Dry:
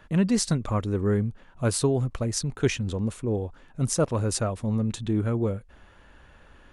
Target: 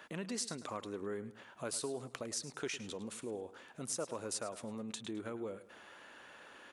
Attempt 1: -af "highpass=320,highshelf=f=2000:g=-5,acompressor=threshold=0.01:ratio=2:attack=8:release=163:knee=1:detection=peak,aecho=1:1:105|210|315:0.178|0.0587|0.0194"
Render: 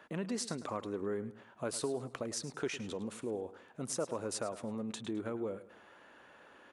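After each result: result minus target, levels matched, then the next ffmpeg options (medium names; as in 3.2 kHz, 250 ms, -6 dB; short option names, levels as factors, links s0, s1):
compression: peak gain reduction -4.5 dB; 4 kHz band -3.0 dB
-af "highpass=320,highshelf=f=2000:g=-5,acompressor=threshold=0.00376:ratio=2:attack=8:release=163:knee=1:detection=peak,aecho=1:1:105|210|315:0.178|0.0587|0.0194"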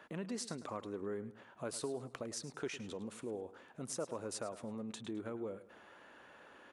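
4 kHz band -3.0 dB
-af "highpass=320,highshelf=f=2000:g=4.5,acompressor=threshold=0.00376:ratio=2:attack=8:release=163:knee=1:detection=peak,aecho=1:1:105|210|315:0.178|0.0587|0.0194"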